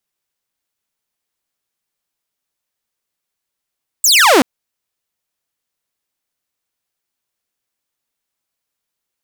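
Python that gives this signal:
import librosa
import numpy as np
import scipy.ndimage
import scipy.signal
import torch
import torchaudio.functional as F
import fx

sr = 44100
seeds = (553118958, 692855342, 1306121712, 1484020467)

y = fx.laser_zap(sr, level_db=-4, start_hz=8200.0, end_hz=230.0, length_s=0.38, wave='saw')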